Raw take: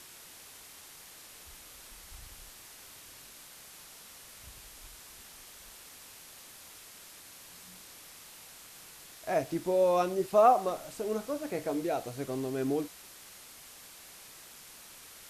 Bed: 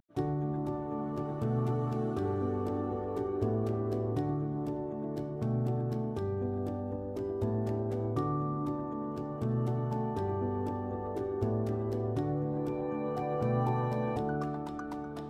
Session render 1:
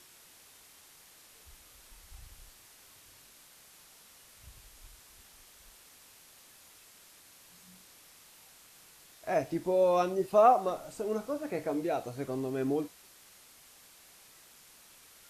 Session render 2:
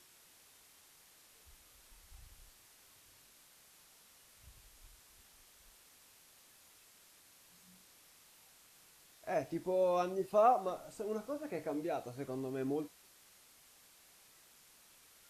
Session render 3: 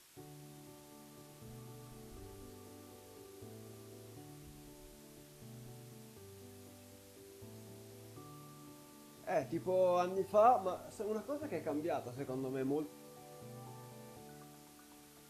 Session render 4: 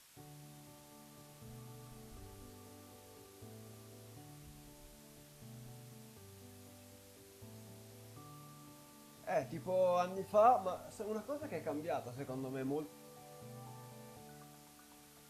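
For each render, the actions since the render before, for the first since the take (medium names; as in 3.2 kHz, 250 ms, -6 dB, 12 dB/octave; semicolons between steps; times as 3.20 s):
noise print and reduce 6 dB
trim -6 dB
add bed -22 dB
peaking EQ 350 Hz -13 dB 0.27 oct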